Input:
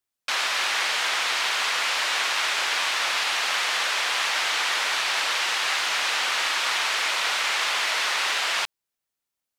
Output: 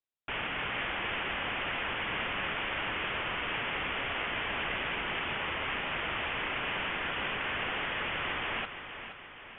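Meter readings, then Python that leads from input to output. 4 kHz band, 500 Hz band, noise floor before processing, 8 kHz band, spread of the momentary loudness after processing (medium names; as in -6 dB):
-13.5 dB, -2.0 dB, -85 dBFS, under -40 dB, 2 LU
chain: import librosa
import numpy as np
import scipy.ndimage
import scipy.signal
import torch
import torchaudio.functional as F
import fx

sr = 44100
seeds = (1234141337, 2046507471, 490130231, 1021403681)

y = fx.freq_invert(x, sr, carrier_hz=3900)
y = fx.echo_feedback(y, sr, ms=471, feedback_pct=54, wet_db=-10)
y = F.gain(torch.from_numpy(y), -9.0).numpy()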